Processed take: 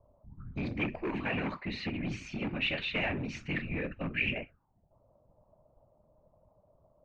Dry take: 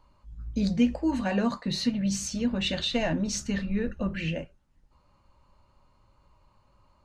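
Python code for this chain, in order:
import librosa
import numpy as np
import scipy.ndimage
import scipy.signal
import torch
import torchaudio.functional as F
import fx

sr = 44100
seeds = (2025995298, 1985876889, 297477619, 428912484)

y = fx.whisperise(x, sr, seeds[0])
y = np.clip(10.0 ** (24.5 / 20.0) * y, -1.0, 1.0) / 10.0 ** (24.5 / 20.0)
y = fx.envelope_lowpass(y, sr, base_hz=580.0, top_hz=2400.0, q=6.7, full_db=-31.5, direction='up')
y = F.gain(torch.from_numpy(y), -6.0).numpy()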